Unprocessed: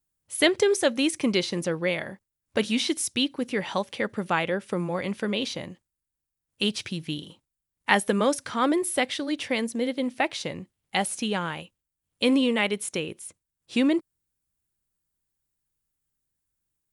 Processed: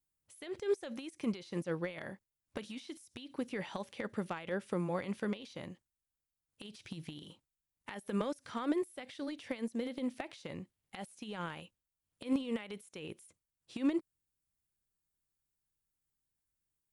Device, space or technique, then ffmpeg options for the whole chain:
de-esser from a sidechain: -filter_complex "[0:a]asplit=2[s0][s1];[s1]highpass=4800,apad=whole_len=746317[s2];[s0][s2]sidechaincompress=threshold=0.00398:ratio=20:attack=1.6:release=46,volume=0.473"

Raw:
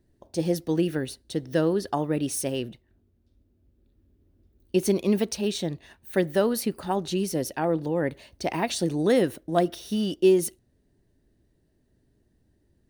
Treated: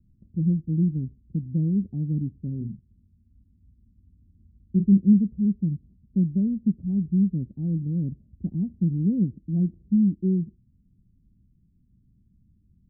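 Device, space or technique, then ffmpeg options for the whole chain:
the neighbour's flat through the wall: -filter_complex "[0:a]asettb=1/sr,asplit=3[s0][s1][s2];[s0]atrim=end=2.574[s3];[s1]atrim=start=2.57:end=4.98,asetpts=PTS-STARTPTS,afade=t=in:d=0.004:c=qsin,afade=t=out:st=2.406:d=0.004:c=qsin,asplit=2[s4][s5];[s5]adelay=35,volume=0.447[s6];[s4][s6]amix=inputs=2:normalize=0,atrim=end_sample=106281[s7];[s2]atrim=start=4.976[s8];[s3][s7]acrossfade=d=0.004:c1=hsin:c2=qsin[s9];[s9][s8]acrossfade=d=0.004:c1=qsin:c2=hsin,lowpass=f=200:w=0.5412,lowpass=f=200:w=1.3066,equalizer=f=200:t=o:w=0.53:g=6,volume=2"

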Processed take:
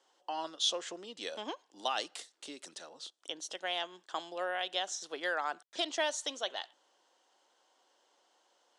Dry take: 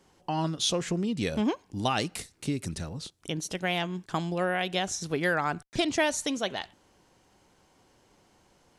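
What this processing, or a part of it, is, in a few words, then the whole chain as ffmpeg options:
phone speaker on a table: -af "highpass=f=400:w=0.5412,highpass=f=400:w=1.3066,equalizer=f=410:t=q:w=4:g=-6,equalizer=f=2300:t=q:w=4:g=-7,equalizer=f=3300:t=q:w=4:g=6,lowpass=f=8600:w=0.5412,lowpass=f=8600:w=1.3066,volume=0.531"

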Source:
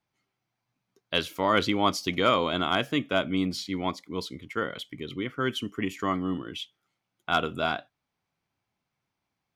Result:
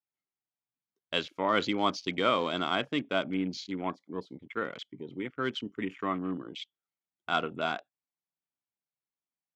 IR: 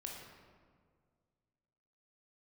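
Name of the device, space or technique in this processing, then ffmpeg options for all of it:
over-cleaned archive recording: -af "highpass=150,lowpass=6300,afwtdn=0.01,volume=0.668"

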